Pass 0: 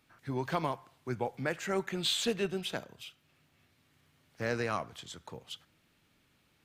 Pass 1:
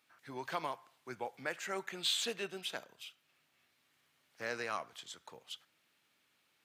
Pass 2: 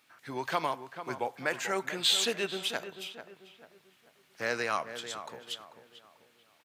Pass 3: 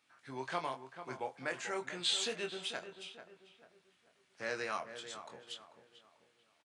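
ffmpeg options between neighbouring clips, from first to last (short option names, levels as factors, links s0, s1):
-af "highpass=f=790:p=1,volume=0.794"
-filter_complex "[0:a]asplit=2[s0][s1];[s1]adelay=441,lowpass=f=1900:p=1,volume=0.316,asplit=2[s2][s3];[s3]adelay=441,lowpass=f=1900:p=1,volume=0.4,asplit=2[s4][s5];[s5]adelay=441,lowpass=f=1900:p=1,volume=0.4,asplit=2[s6][s7];[s7]adelay=441,lowpass=f=1900:p=1,volume=0.4[s8];[s0][s2][s4][s6][s8]amix=inputs=5:normalize=0,volume=2.37"
-filter_complex "[0:a]asplit=2[s0][s1];[s1]adelay=23,volume=0.501[s2];[s0][s2]amix=inputs=2:normalize=0,aresample=22050,aresample=44100,volume=0.398"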